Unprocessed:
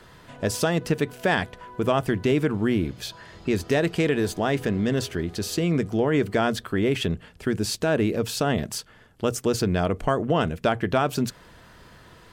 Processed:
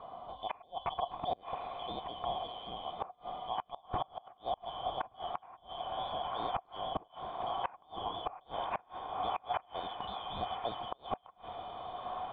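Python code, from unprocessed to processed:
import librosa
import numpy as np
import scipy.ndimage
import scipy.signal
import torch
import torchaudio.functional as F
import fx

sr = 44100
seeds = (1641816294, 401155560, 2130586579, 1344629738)

p1 = fx.band_shuffle(x, sr, order='3412')
p2 = fx.low_shelf(p1, sr, hz=210.0, db=9.0)
p3 = fx.over_compress(p2, sr, threshold_db=-29.0, ratio=-0.5)
p4 = p2 + (p3 * 10.0 ** (1.5 / 20.0))
p5 = fx.formant_cascade(p4, sr, vowel='a')
p6 = fx.echo_diffused(p5, sr, ms=1041, feedback_pct=53, wet_db=-10.0)
p7 = fx.gate_flip(p6, sr, shuts_db=-38.0, range_db=-28)
y = p7 * 10.0 ** (15.5 / 20.0)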